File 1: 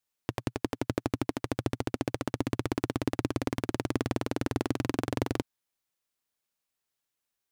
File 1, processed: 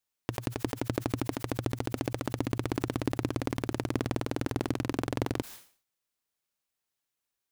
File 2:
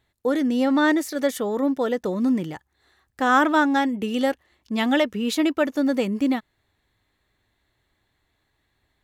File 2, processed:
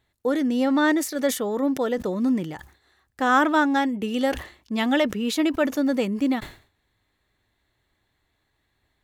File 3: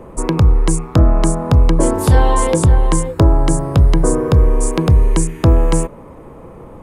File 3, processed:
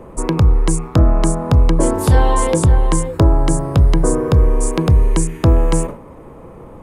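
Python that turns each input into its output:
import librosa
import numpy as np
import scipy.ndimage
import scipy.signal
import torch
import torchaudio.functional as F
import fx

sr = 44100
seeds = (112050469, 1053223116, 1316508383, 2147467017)

y = fx.sustainer(x, sr, db_per_s=130.0)
y = y * 10.0 ** (-1.0 / 20.0)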